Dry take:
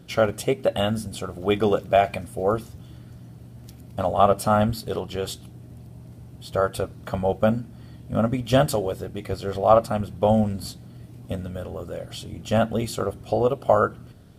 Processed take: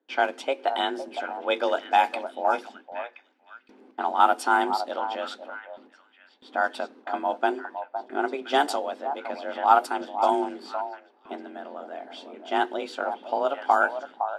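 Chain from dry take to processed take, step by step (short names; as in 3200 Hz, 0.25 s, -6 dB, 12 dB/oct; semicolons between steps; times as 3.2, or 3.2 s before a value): frequency shift +140 Hz; HPF 520 Hz 12 dB/oct; gate with hold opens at -41 dBFS; bell 660 Hz -4.5 dB 0.64 oct; on a send: delay with a stepping band-pass 0.511 s, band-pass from 790 Hz, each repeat 1.4 oct, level -7 dB; on the sum: low-pass opened by the level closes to 2000 Hz, open at -15.5 dBFS; gain +1 dB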